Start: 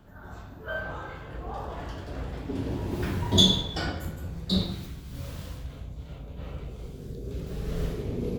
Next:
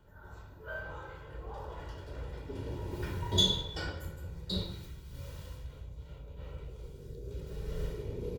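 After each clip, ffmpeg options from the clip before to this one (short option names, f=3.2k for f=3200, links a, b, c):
-af "aecho=1:1:2.1:0.54,volume=-8.5dB"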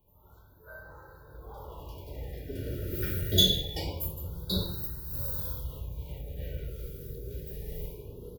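-af "dynaudnorm=f=530:g=7:m=16dB,aexciter=amount=11.3:drive=2.6:freq=11k,afftfilt=real='re*(1-between(b*sr/1024,900*pow(2700/900,0.5+0.5*sin(2*PI*0.25*pts/sr))/1.41,900*pow(2700/900,0.5+0.5*sin(2*PI*0.25*pts/sr))*1.41))':imag='im*(1-between(b*sr/1024,900*pow(2700/900,0.5+0.5*sin(2*PI*0.25*pts/sr))/1.41,900*pow(2700/900,0.5+0.5*sin(2*PI*0.25*pts/sr))*1.41))':win_size=1024:overlap=0.75,volume=-7.5dB"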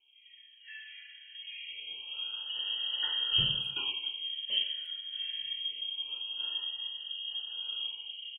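-filter_complex "[0:a]asoftclip=type=tanh:threshold=-12dB,lowpass=f=2.8k:t=q:w=0.5098,lowpass=f=2.8k:t=q:w=0.6013,lowpass=f=2.8k:t=q:w=0.9,lowpass=f=2.8k:t=q:w=2.563,afreqshift=-3300,asplit=2[a][b];[b]adelay=280,highpass=300,lowpass=3.4k,asoftclip=type=hard:threshold=-24dB,volume=-20dB[c];[a][c]amix=inputs=2:normalize=0"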